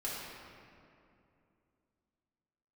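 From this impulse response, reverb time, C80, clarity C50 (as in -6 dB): 2.6 s, 0.0 dB, -1.5 dB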